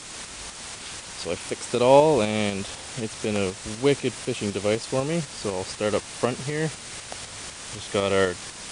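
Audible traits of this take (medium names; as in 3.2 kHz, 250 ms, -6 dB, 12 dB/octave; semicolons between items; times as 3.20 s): a quantiser's noise floor 6-bit, dither triangular; tremolo saw up 4 Hz, depth 45%; WMA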